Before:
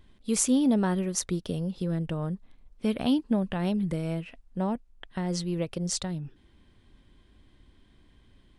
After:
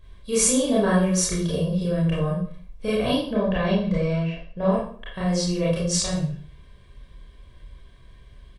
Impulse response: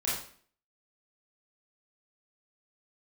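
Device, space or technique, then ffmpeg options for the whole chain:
microphone above a desk: -filter_complex "[0:a]asettb=1/sr,asplit=3[a][b][c];[a]atrim=end=3.284[d];[b]atrim=start=3.28:end=4.69,asetpts=PTS-STARTPTS,afade=t=in:d=0.004:c=qsin,afade=t=out:st=1.406:d=0.004:c=qsin,lowpass=f=5.7k:w=0.5412,lowpass=f=5.7k:w=1.3066[e];[c]atrim=start=4.686[f];[d][e]acrossfade=d=0.004:c1=hsin:c2=qsin[g];[g][f]acrossfade=d=0.004:c1=qsin:c2=hsin,aecho=1:1:1.8:0.71[h];[1:a]atrim=start_sample=2205[i];[h][i]afir=irnorm=-1:irlink=0"

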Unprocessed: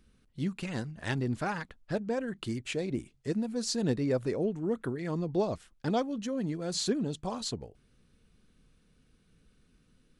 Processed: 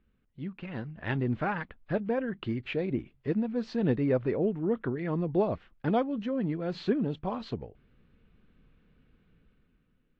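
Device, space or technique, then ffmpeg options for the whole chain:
action camera in a waterproof case: -af "lowpass=f=2.9k:w=0.5412,lowpass=f=2.9k:w=1.3066,dynaudnorm=f=130:g=13:m=9dB,volume=-6.5dB" -ar 32000 -c:a aac -b:a 48k

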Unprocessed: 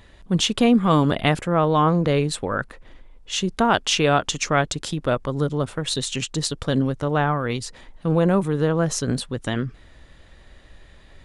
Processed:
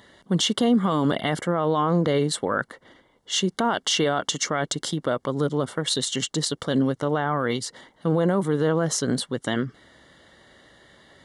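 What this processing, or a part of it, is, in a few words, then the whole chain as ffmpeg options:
PA system with an anti-feedback notch: -af "highpass=170,asuperstop=centerf=2500:order=20:qfactor=5.4,alimiter=limit=-14dB:level=0:latency=1:release=31,volume=1.5dB"

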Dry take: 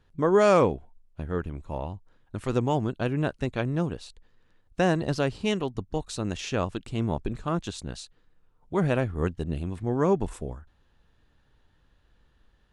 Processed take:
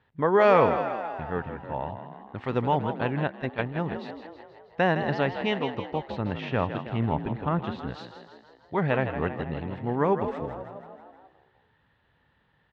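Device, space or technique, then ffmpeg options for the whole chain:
frequency-shifting delay pedal into a guitar cabinet: -filter_complex "[0:a]asplit=8[a][b][c][d][e][f][g][h];[b]adelay=161,afreqshift=52,volume=-9.5dB[i];[c]adelay=322,afreqshift=104,volume=-14.1dB[j];[d]adelay=483,afreqshift=156,volume=-18.7dB[k];[e]adelay=644,afreqshift=208,volume=-23.2dB[l];[f]adelay=805,afreqshift=260,volume=-27.8dB[m];[g]adelay=966,afreqshift=312,volume=-32.4dB[n];[h]adelay=1127,afreqshift=364,volume=-37dB[o];[a][i][j][k][l][m][n][o]amix=inputs=8:normalize=0,highpass=110,equalizer=f=200:t=q:w=4:g=-3,equalizer=f=330:t=q:w=4:g=-5,equalizer=f=870:t=q:w=4:g=6,equalizer=f=1.9k:t=q:w=4:g=7,lowpass=f=3.8k:w=0.5412,lowpass=f=3.8k:w=1.3066,asettb=1/sr,asplit=3[p][q][r];[p]atrim=end=3.274[s];[q]atrim=start=3.27:end=3.8,asetpts=PTS-STARTPTS,afade=t=in:d=0.004:c=qsin,afade=t=out:st=0.526:d=0.004:c=qsin,agate=range=-8dB:threshold=-28dB:ratio=16:detection=peak[t];[r]atrim=start=3.796[u];[s][t]acrossfade=d=0.004:c1=hsin:c2=qsin[v];[v][u]acrossfade=d=0.004:c1=qsin:c2=hsin,asettb=1/sr,asplit=3[w][x][y];[w]atrim=end=6.084[z];[x]atrim=start=6.08:end=7.94,asetpts=PTS-STARTPTS,afade=t=in:d=0.004:c=qsin,afade=t=out:st=1.856:d=0.004:c=qsin,bass=f=250:g=5,treble=f=4k:g=-11[aa];[y]atrim=start=7.936[ab];[z][aa]acrossfade=d=0.004:c1=hsin:c2=qsin[ac];[ac][ab]acrossfade=d=0.004:c1=qsin:c2=hsin"

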